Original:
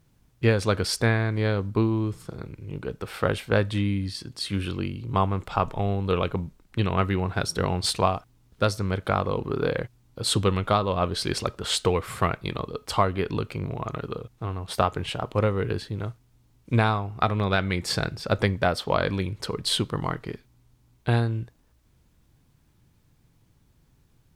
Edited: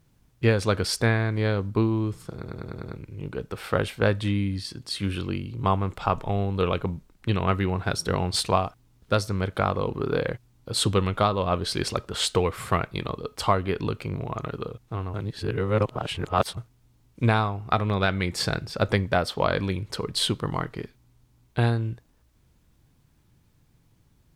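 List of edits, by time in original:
2.36 s: stutter 0.10 s, 6 plays
14.64–16.07 s: reverse

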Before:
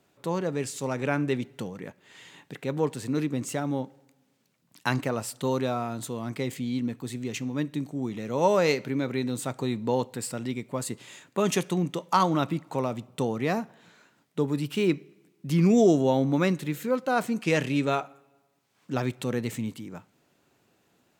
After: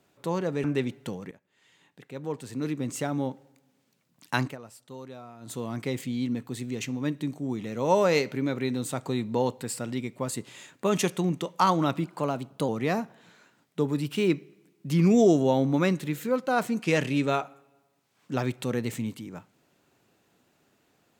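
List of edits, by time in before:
0.64–1.17 s: delete
1.84–3.53 s: fade in quadratic, from -15 dB
4.93–6.10 s: dip -15.5 dB, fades 0.17 s
12.57–13.28 s: speed 110%

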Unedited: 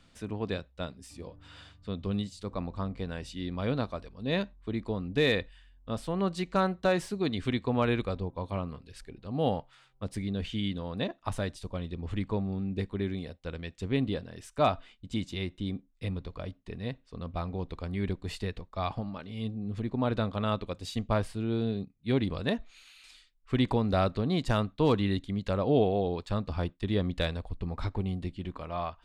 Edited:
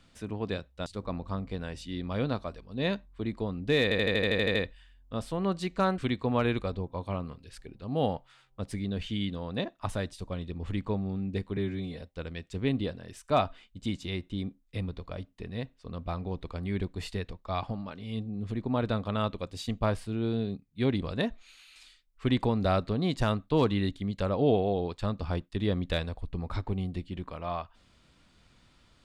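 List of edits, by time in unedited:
0.86–2.34 s: delete
5.31 s: stutter 0.08 s, 10 plays
6.74–7.41 s: delete
13.00–13.30 s: stretch 1.5×

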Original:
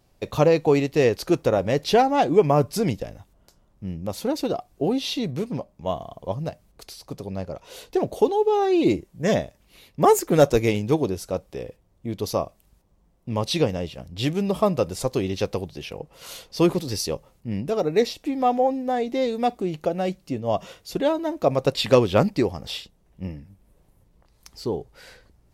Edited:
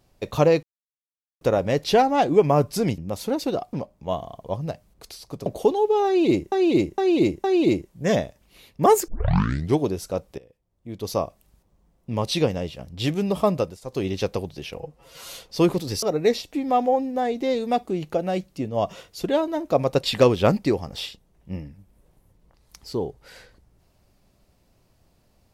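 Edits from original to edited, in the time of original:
0.63–1.41 s: mute
2.98–3.95 s: delete
4.70–5.51 s: delete
7.24–8.03 s: delete
8.63–9.09 s: loop, 4 plays
10.27 s: tape start 0.71 s
11.57–12.36 s: fade in quadratic, from -18.5 dB
14.76–15.24 s: dip -21 dB, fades 0.24 s
15.96–16.33 s: stretch 1.5×
17.03–17.74 s: delete

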